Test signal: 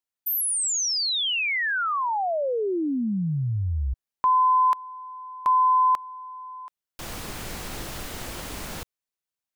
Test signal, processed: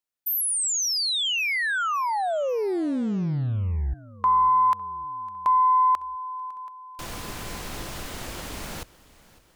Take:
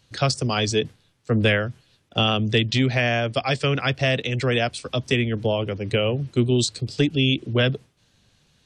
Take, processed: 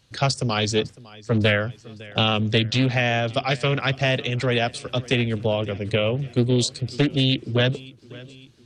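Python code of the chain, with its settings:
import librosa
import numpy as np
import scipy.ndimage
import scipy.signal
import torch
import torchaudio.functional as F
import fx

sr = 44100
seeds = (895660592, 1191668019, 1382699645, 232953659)

p1 = x + fx.echo_feedback(x, sr, ms=555, feedback_pct=55, wet_db=-21.0, dry=0)
y = fx.doppler_dist(p1, sr, depth_ms=0.32)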